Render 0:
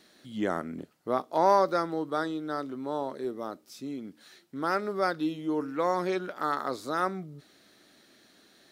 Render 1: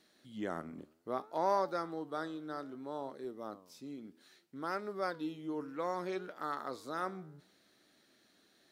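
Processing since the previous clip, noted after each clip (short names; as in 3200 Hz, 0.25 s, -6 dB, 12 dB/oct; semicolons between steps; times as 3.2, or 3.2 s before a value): flange 0.63 Hz, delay 6 ms, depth 8.1 ms, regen +89%; gain -4.5 dB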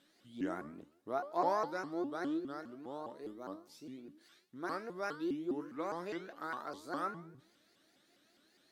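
resonator 320 Hz, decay 0.4 s, harmonics all, mix 80%; shaped vibrato saw up 4.9 Hz, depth 250 cents; gain +9.5 dB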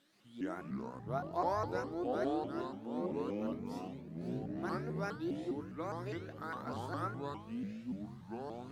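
echoes that change speed 0.128 s, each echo -6 st, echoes 3; gain -2 dB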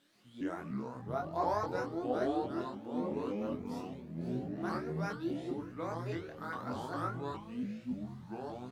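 doubler 24 ms -3 dB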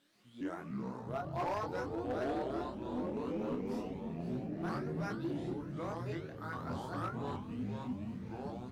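echoes that change speed 0.196 s, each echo -7 st, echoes 2, each echo -6 dB; overloaded stage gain 29.5 dB; gain -2 dB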